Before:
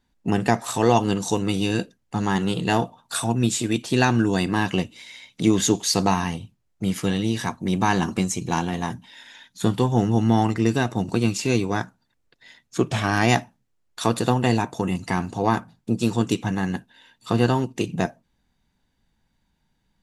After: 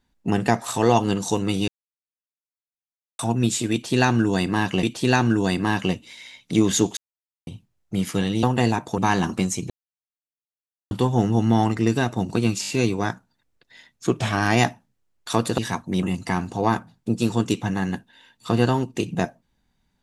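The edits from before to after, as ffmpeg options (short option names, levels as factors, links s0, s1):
-filter_complex "[0:a]asplit=16[s0][s1][s2][s3][s4][s5][s6][s7][s8][s9][s10][s11][s12][s13][s14][s15];[s0]atrim=end=1.68,asetpts=PTS-STARTPTS,afade=t=out:st=1.676:d=0.004:c=hsin[s16];[s1]atrim=start=1.68:end=3.19,asetpts=PTS-STARTPTS,volume=0[s17];[s2]atrim=start=3.19:end=4.832,asetpts=PTS-STARTPTS,afade=t=in:d=0.004:c=hsin[s18];[s3]atrim=start=3.718:end=5.86,asetpts=PTS-STARTPTS,afade=t=out:st=2.138:d=0.004:c=hsin[s19];[s4]atrim=start=5.86:end=6.36,asetpts=PTS-STARTPTS,volume=0[s20];[s5]atrim=start=6.36:end=7.322,asetpts=PTS-STARTPTS,afade=t=in:d=0.004:c=hsin[s21];[s6]atrim=start=14.288:end=14.842[s22];[s7]atrim=start=7.768:end=8.49,asetpts=PTS-STARTPTS,afade=t=out:st=0.718:d=0.004:c=hsin[s23];[s8]atrim=start=8.49:end=9.7,asetpts=PTS-STARTPTS,volume=0[s24];[s9]atrim=start=9.7:end=11.422,asetpts=PTS-STARTPTS,afade=t=in:d=0.004:c=hsin[s25];[s10]atrim=start=11.398:end=11.422[s26];[s11]atrim=start=11.398:end=11.422[s27];[s12]atrim=start=11.398:end=11.422[s28];[s13]atrim=start=11.398:end=14.292[s29];[s14]atrim=start=7.318:end=7.772[s30];[s15]atrim=start=14.838[s31];[s16][s17][s18]concat=n=3:v=0:a=1[s32];[s19][s20][s21]concat=n=3:v=0:a=1[s33];[s32][s33]acrossfade=d=0.004:c1=hsin:c2=hsin[s34];[s34][s22]acrossfade=d=0.004:c1=hsin:c2=hsin[s35];[s23][s24][s25]concat=n=3:v=0:a=1[s36];[s35][s36]acrossfade=d=0.004:c1=hsin:c2=hsin[s37];[s37][s26]acrossfade=d=0.004:c1=hsin:c2=hsin[s38];[s38][s27]acrossfade=d=0.004:c1=hsin:c2=hsin[s39];[s39][s28]acrossfade=d=0.004:c1=hsin:c2=hsin[s40];[s40][s29]acrossfade=d=0.004:c1=hsin:c2=hsin[s41];[s41][s30]acrossfade=d=0.004:c1=hsin:c2=hsin[s42];[s42][s31]acrossfade=d=0.004:c1=hsin:c2=hsin"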